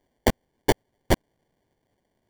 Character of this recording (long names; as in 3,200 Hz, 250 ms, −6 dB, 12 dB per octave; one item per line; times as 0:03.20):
aliases and images of a low sample rate 1,300 Hz, jitter 0%